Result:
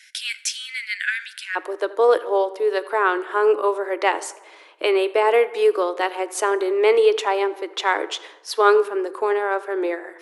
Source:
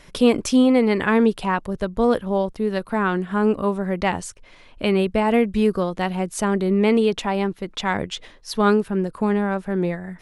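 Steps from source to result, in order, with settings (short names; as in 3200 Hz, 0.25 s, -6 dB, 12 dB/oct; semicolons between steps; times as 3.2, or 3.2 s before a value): rippled Chebyshev high-pass 1500 Hz, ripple 3 dB, from 1.55 s 310 Hz; tape echo 82 ms, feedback 66%, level -18.5 dB, low-pass 2300 Hz; plate-style reverb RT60 0.97 s, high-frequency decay 0.65×, DRR 16 dB; gain +4.5 dB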